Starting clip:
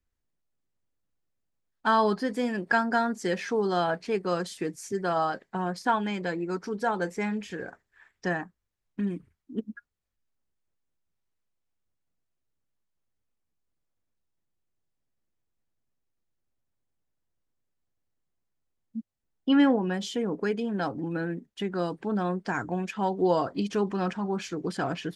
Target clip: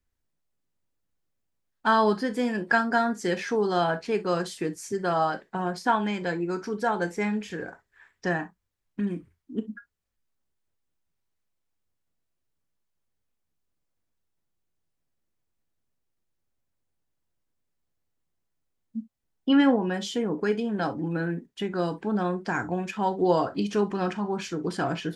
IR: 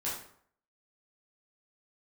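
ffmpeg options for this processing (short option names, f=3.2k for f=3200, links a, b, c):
-filter_complex "[0:a]asplit=2[a][b];[1:a]atrim=start_sample=2205,atrim=end_sample=3087[c];[b][c]afir=irnorm=-1:irlink=0,volume=-10.5dB[d];[a][d]amix=inputs=2:normalize=0"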